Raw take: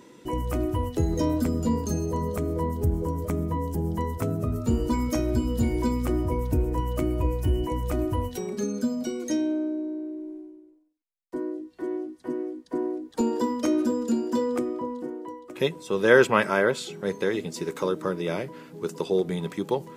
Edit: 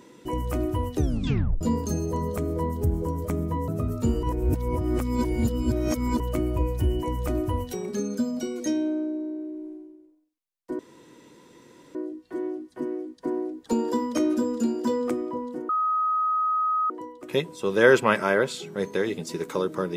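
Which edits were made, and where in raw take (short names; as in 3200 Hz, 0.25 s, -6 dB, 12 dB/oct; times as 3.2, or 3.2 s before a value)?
0.95 tape stop 0.66 s
3.68–4.32 cut
4.87–6.84 reverse
11.43 insert room tone 1.16 s
15.17 add tone 1260 Hz -21 dBFS 1.21 s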